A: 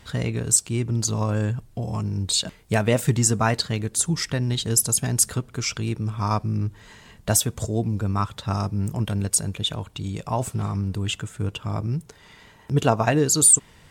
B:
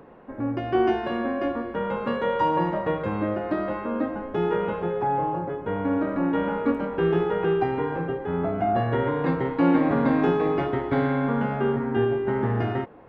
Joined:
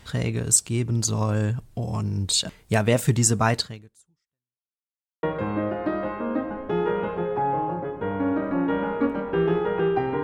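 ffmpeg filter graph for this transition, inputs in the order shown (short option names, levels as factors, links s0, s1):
-filter_complex "[0:a]apad=whole_dur=10.23,atrim=end=10.23,asplit=2[s0][s1];[s0]atrim=end=4.77,asetpts=PTS-STARTPTS,afade=t=out:st=3.59:d=1.18:c=exp[s2];[s1]atrim=start=4.77:end=5.23,asetpts=PTS-STARTPTS,volume=0[s3];[1:a]atrim=start=2.88:end=7.88,asetpts=PTS-STARTPTS,afade=t=in:d=0.004:c=hsin[s4];[s2][s3][s4]concat=n=3:v=0:a=1"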